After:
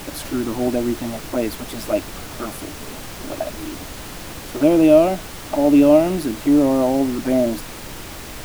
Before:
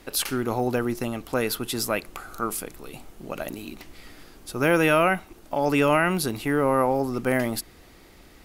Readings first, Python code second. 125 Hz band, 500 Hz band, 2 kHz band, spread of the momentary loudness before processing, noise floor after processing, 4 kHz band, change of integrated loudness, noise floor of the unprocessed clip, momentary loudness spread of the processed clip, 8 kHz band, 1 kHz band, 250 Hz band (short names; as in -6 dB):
+0.5 dB, +6.5 dB, -6.0 dB, 20 LU, -34 dBFS, +0.5 dB, +6.0 dB, -51 dBFS, 20 LU, +0.5 dB, -1.0 dB, +10.0 dB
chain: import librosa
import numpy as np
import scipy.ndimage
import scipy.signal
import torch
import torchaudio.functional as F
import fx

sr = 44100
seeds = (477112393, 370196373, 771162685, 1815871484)

y = fx.small_body(x, sr, hz=(300.0, 610.0), ring_ms=35, db=18)
y = fx.env_flanger(y, sr, rest_ms=7.0, full_db=-9.0)
y = fx.dmg_noise_colour(y, sr, seeds[0], colour='pink', level_db=-29.0)
y = y * librosa.db_to_amplitude(-4.5)